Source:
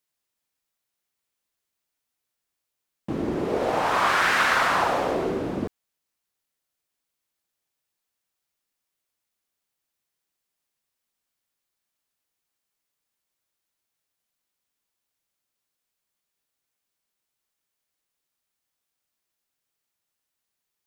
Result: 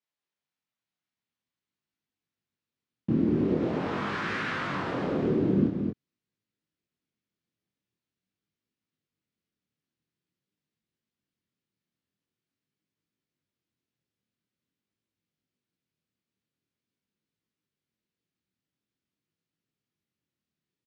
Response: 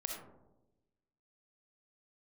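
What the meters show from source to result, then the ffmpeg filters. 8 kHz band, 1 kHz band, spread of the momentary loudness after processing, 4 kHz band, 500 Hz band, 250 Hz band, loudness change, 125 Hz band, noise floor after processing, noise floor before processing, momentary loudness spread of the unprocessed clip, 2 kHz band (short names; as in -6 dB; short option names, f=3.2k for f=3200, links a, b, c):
under -15 dB, -12.5 dB, 8 LU, -11.5 dB, -4.0 dB, +4.5 dB, -5.0 dB, +5.5 dB, under -85 dBFS, -83 dBFS, 11 LU, -11.0 dB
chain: -filter_complex "[0:a]highpass=150,lowpass=4.2k,asplit=2[a][b];[b]aecho=0:1:229:0.473[c];[a][c]amix=inputs=2:normalize=0,flanger=delay=18.5:depth=7.9:speed=0.46,acompressor=threshold=-27dB:ratio=2.5,asubboost=boost=11.5:cutoff=230,volume=-2.5dB"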